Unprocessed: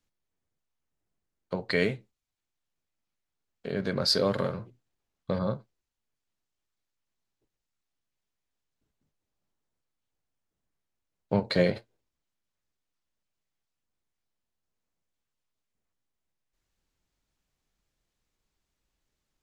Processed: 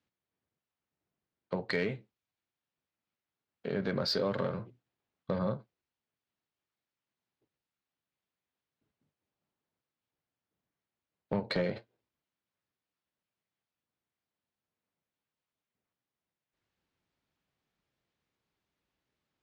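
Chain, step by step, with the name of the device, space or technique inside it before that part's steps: AM radio (band-pass 100–3800 Hz; compression 4:1, threshold -26 dBFS, peak gain reduction 7.5 dB; saturation -20.5 dBFS, distortion -19 dB)

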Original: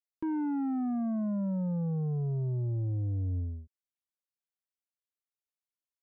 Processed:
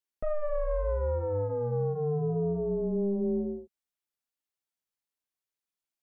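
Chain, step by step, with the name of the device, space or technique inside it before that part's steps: alien voice (ring modulator 300 Hz; flange 1.1 Hz, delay 2 ms, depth 4.3 ms, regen -54%); trim +9 dB

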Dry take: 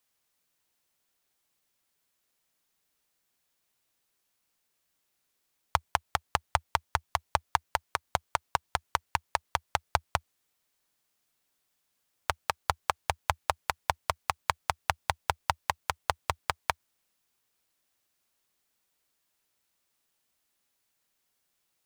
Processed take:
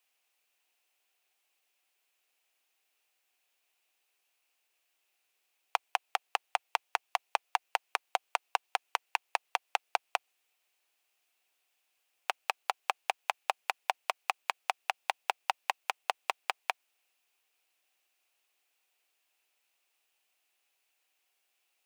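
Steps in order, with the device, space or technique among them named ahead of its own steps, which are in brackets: laptop speaker (high-pass 340 Hz 24 dB/octave; peaking EQ 750 Hz +7 dB 0.26 oct; peaking EQ 2.6 kHz +10.5 dB 0.56 oct; peak limiter -8 dBFS, peak gain reduction 6 dB); trim -2 dB

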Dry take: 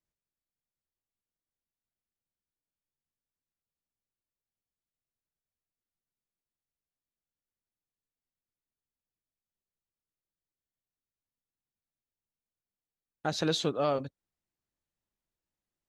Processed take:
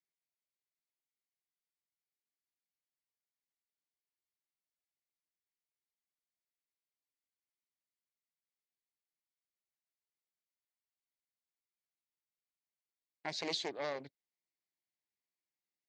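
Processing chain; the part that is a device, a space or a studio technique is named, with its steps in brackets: full-range speaker at full volume (loudspeaker Doppler distortion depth 0.6 ms; cabinet simulation 200–8400 Hz, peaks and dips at 230 Hz -5 dB, 510 Hz -4 dB, 1.3 kHz -10 dB, 2.1 kHz +10 dB, 4.5 kHz +6 dB); trim -8 dB

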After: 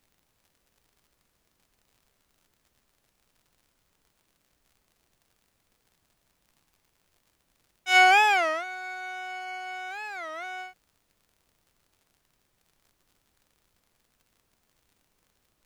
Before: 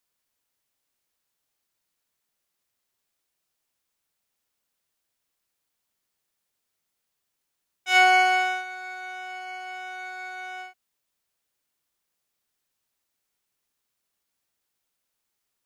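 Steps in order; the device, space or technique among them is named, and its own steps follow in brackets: warped LP (warped record 33 1/3 rpm, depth 250 cents; crackle; pink noise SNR 41 dB)

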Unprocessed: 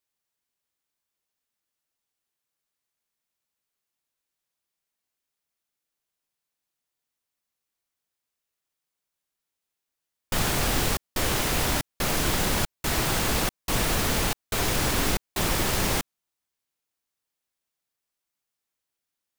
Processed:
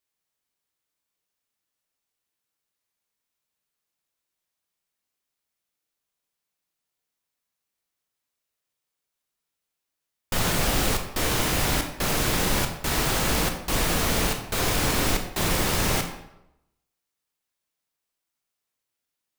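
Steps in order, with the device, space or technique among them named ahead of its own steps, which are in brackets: bathroom (reverberation RT60 0.85 s, pre-delay 18 ms, DRR 4.5 dB)

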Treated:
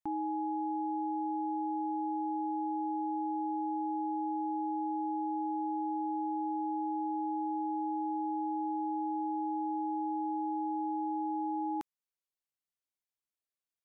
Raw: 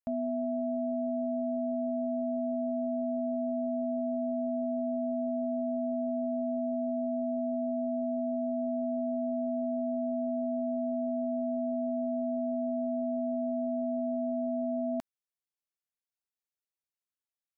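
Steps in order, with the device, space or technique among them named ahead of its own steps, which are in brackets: nightcore (tape speed +27%); trim -2.5 dB

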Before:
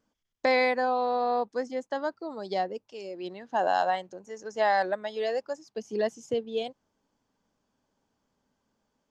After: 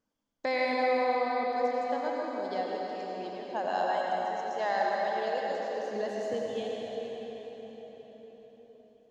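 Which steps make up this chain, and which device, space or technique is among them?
cathedral (reverberation RT60 5.2 s, pre-delay 80 ms, DRR -3 dB); trim -7 dB

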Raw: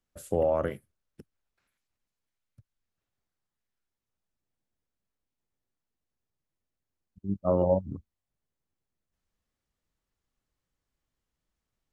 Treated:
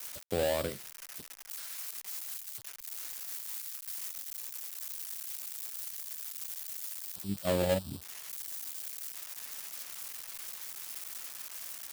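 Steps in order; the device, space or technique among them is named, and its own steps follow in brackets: budget class-D amplifier (dead-time distortion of 0.23 ms; zero-crossing glitches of -21 dBFS); trim -4.5 dB

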